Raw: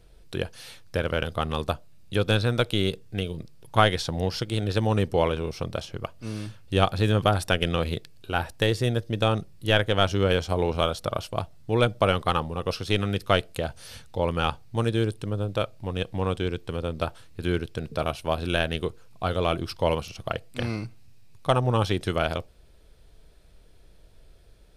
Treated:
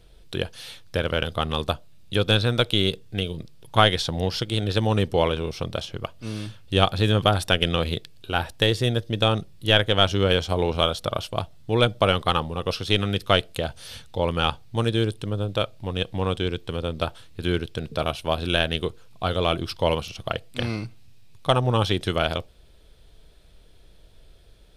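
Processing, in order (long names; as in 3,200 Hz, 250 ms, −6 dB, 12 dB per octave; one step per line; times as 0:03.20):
parametric band 3,400 Hz +6 dB 0.54 octaves
level +1.5 dB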